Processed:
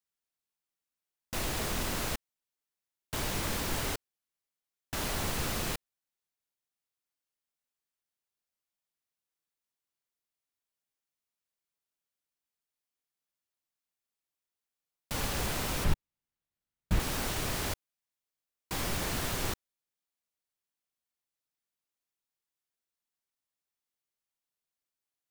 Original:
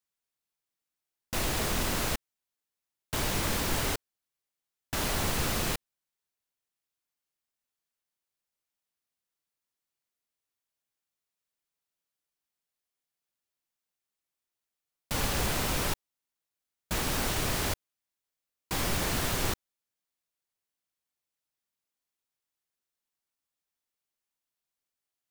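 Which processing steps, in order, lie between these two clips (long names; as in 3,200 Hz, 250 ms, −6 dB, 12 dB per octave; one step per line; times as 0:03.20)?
0:15.84–0:17.00: bass and treble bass +12 dB, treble −6 dB
level −3.5 dB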